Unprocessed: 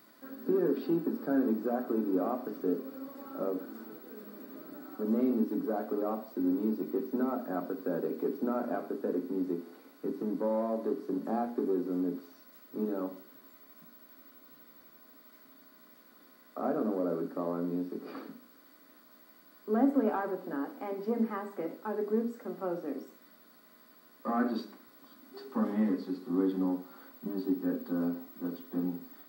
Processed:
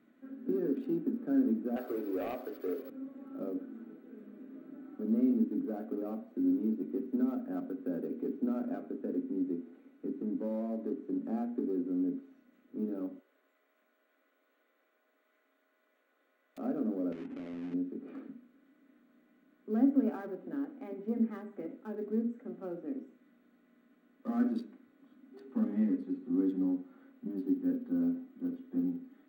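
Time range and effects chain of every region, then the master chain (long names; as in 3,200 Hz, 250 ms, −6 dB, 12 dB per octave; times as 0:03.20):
0:01.76–0:02.90: high-pass filter 400 Hz 24 dB per octave + leveller curve on the samples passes 2
0:13.19–0:16.58: high-pass filter 470 Hz 24 dB per octave + wrap-around overflow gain 41.5 dB
0:17.12–0:17.74: each half-wave held at its own peak + downward compressor, threshold −36 dBFS + high-frequency loss of the air 330 metres
whole clip: adaptive Wiener filter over 9 samples; graphic EQ with 15 bands 250 Hz +9 dB, 1,000 Hz −9 dB, 2,500 Hz +3 dB; level −7 dB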